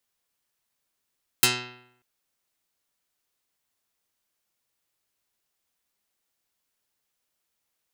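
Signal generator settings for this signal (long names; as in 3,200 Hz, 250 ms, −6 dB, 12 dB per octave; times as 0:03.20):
Karplus-Strong string B2, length 0.59 s, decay 0.75 s, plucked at 0.21, dark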